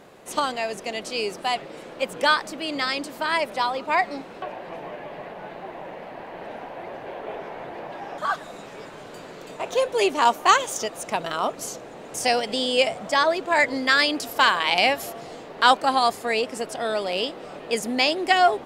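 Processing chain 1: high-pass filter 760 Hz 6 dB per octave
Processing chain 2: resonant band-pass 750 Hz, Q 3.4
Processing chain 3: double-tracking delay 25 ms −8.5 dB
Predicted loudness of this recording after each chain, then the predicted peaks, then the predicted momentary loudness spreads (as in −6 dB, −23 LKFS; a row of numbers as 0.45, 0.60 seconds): −24.5, −30.5, −22.5 LKFS; −4.0, −9.0, −1.5 dBFS; 21, 17, 19 LU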